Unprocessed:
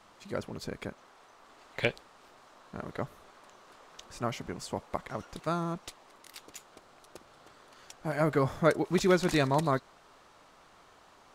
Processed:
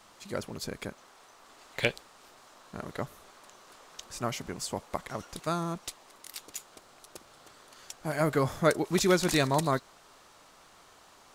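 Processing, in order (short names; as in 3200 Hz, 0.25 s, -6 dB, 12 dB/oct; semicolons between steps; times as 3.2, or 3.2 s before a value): high shelf 4500 Hz +10.5 dB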